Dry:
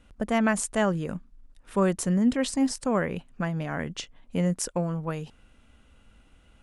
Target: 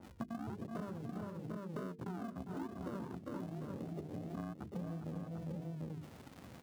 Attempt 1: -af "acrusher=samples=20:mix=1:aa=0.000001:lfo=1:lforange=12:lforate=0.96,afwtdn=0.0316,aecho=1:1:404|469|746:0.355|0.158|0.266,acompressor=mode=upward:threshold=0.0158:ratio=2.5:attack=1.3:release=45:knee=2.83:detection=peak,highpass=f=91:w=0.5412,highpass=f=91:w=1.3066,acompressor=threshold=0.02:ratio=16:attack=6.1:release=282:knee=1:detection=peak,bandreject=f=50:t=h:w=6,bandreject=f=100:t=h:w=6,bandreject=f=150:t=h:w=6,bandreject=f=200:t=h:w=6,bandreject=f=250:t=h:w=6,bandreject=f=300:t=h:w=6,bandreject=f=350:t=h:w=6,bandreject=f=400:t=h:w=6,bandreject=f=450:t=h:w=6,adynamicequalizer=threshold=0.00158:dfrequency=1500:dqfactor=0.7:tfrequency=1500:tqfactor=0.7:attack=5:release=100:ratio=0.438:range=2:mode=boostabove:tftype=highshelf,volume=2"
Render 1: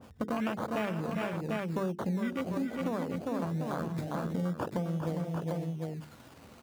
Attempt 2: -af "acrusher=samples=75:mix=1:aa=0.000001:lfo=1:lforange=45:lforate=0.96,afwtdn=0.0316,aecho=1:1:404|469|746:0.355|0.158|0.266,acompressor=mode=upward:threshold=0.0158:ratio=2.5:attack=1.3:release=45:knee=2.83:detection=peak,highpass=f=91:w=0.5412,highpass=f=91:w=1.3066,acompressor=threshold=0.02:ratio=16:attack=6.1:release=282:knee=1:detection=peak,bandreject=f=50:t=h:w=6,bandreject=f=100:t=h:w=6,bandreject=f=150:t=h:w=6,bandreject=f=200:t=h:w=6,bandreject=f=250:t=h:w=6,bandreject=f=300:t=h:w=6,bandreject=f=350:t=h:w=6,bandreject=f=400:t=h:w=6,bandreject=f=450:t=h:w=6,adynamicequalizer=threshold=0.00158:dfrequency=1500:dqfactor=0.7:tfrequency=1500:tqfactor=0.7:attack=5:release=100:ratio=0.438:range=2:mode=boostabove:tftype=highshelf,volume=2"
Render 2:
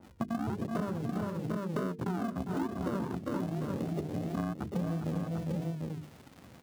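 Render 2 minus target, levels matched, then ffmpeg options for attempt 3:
compression: peak gain reduction -9.5 dB
-af "acrusher=samples=75:mix=1:aa=0.000001:lfo=1:lforange=45:lforate=0.96,afwtdn=0.0316,aecho=1:1:404|469|746:0.355|0.158|0.266,acompressor=mode=upward:threshold=0.0158:ratio=2.5:attack=1.3:release=45:knee=2.83:detection=peak,highpass=f=91:w=0.5412,highpass=f=91:w=1.3066,acompressor=threshold=0.00631:ratio=16:attack=6.1:release=282:knee=1:detection=peak,bandreject=f=50:t=h:w=6,bandreject=f=100:t=h:w=6,bandreject=f=150:t=h:w=6,bandreject=f=200:t=h:w=6,bandreject=f=250:t=h:w=6,bandreject=f=300:t=h:w=6,bandreject=f=350:t=h:w=6,bandreject=f=400:t=h:w=6,bandreject=f=450:t=h:w=6,adynamicequalizer=threshold=0.00158:dfrequency=1500:dqfactor=0.7:tfrequency=1500:tqfactor=0.7:attack=5:release=100:ratio=0.438:range=2:mode=boostabove:tftype=highshelf,volume=2"

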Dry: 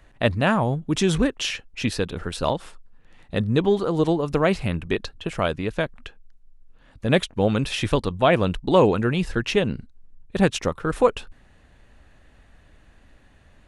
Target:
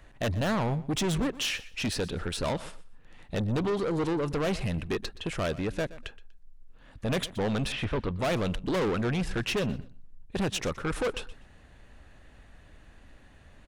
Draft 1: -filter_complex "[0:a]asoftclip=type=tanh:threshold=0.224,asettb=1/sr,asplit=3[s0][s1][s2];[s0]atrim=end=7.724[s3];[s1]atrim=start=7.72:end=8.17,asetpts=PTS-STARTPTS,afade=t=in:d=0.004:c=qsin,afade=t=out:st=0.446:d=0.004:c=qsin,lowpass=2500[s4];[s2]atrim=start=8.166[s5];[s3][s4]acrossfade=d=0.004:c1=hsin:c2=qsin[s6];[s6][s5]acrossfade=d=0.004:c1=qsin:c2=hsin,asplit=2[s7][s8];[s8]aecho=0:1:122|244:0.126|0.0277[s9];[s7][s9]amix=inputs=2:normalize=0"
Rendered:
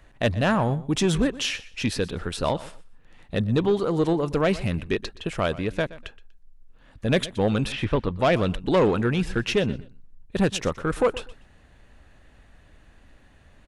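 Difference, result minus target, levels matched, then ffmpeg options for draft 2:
saturation: distortion -10 dB
-filter_complex "[0:a]asoftclip=type=tanh:threshold=0.0562,asettb=1/sr,asplit=3[s0][s1][s2];[s0]atrim=end=7.724[s3];[s1]atrim=start=7.72:end=8.17,asetpts=PTS-STARTPTS,afade=t=in:d=0.004:c=qsin,afade=t=out:st=0.446:d=0.004:c=qsin,lowpass=2500[s4];[s2]atrim=start=8.166[s5];[s3][s4]acrossfade=d=0.004:c1=hsin:c2=qsin[s6];[s6][s5]acrossfade=d=0.004:c1=qsin:c2=hsin,asplit=2[s7][s8];[s8]aecho=0:1:122|244:0.126|0.0277[s9];[s7][s9]amix=inputs=2:normalize=0"

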